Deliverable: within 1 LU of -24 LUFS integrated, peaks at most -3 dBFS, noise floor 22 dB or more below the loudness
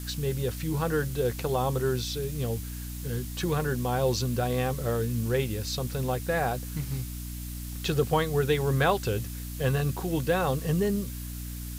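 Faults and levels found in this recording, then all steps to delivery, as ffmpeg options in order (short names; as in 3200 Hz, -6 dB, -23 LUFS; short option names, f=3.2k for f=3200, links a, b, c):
hum 60 Hz; harmonics up to 300 Hz; hum level -35 dBFS; noise floor -37 dBFS; noise floor target -51 dBFS; loudness -29.0 LUFS; peak -11.5 dBFS; loudness target -24.0 LUFS
-> -af "bandreject=f=60:t=h:w=4,bandreject=f=120:t=h:w=4,bandreject=f=180:t=h:w=4,bandreject=f=240:t=h:w=4,bandreject=f=300:t=h:w=4"
-af "afftdn=nr=14:nf=-37"
-af "volume=5dB"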